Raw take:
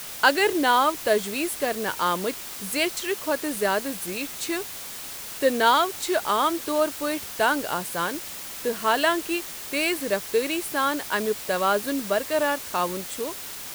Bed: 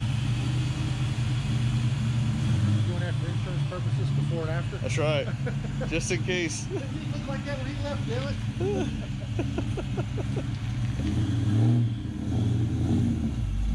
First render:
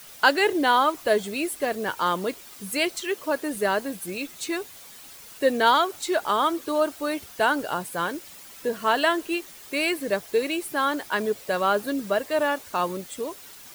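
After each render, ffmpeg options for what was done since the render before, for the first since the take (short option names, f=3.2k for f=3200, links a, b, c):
-af "afftdn=nr=10:nf=-37"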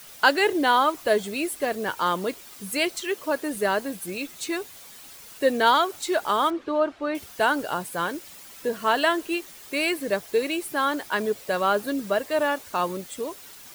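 -filter_complex "[0:a]asettb=1/sr,asplit=3[a][b][c];[a]atrim=end=6.504[d];[b]atrim=start=6.5:end=7.15,asetpts=PTS-STARTPTS,afade=t=in:d=0.004:c=qsin,afade=t=out:st=0.646:d=0.004:c=qsin,lowpass=2.7k[e];[c]atrim=start=7.146[f];[d][e]acrossfade=d=0.004:c1=hsin:c2=qsin[g];[g][f]acrossfade=d=0.004:c1=qsin:c2=hsin"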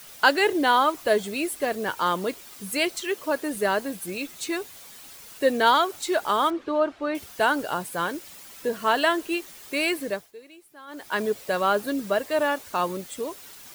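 -filter_complex "[0:a]asplit=3[a][b][c];[a]atrim=end=10.32,asetpts=PTS-STARTPTS,afade=t=out:st=10:d=0.32:silence=0.0841395[d];[b]atrim=start=10.32:end=10.87,asetpts=PTS-STARTPTS,volume=-21.5dB[e];[c]atrim=start=10.87,asetpts=PTS-STARTPTS,afade=t=in:d=0.32:silence=0.0841395[f];[d][e][f]concat=n=3:v=0:a=1"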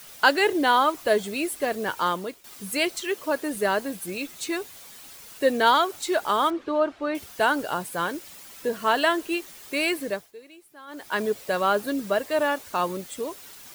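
-filter_complex "[0:a]asplit=2[a][b];[a]atrim=end=2.44,asetpts=PTS-STARTPTS,afade=t=out:st=2.04:d=0.4:silence=0.199526[c];[b]atrim=start=2.44,asetpts=PTS-STARTPTS,afade=t=in:d=0.004:c=hsin:silence=0.199526[d];[c][d]concat=n=2:v=0:a=1"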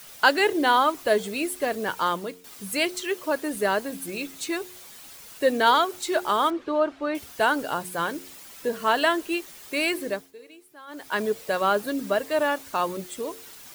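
-af "bandreject=f=90.46:t=h:w=4,bandreject=f=180.92:t=h:w=4,bandreject=f=271.38:t=h:w=4,bandreject=f=361.84:t=h:w=4,bandreject=f=452.3:t=h:w=4"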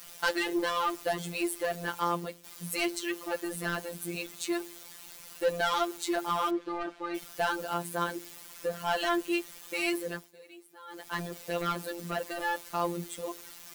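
-af "asoftclip=type=tanh:threshold=-20dB,afftfilt=real='hypot(re,im)*cos(PI*b)':imag='0':win_size=1024:overlap=0.75"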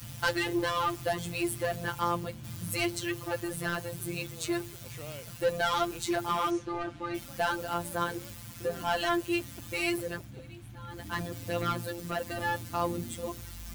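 -filter_complex "[1:a]volume=-17.5dB[a];[0:a][a]amix=inputs=2:normalize=0"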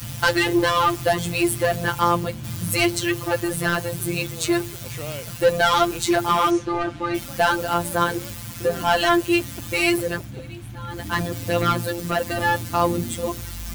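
-af "volume=10.5dB,alimiter=limit=-1dB:level=0:latency=1"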